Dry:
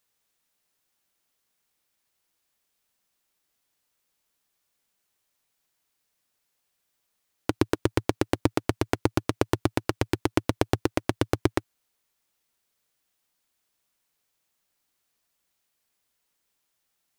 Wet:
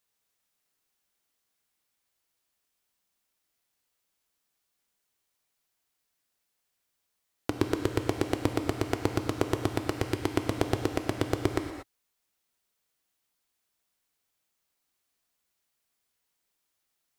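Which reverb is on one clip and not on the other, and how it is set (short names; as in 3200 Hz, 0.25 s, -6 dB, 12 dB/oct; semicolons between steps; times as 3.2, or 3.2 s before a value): non-linear reverb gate 0.26 s flat, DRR 5 dB; gain -4 dB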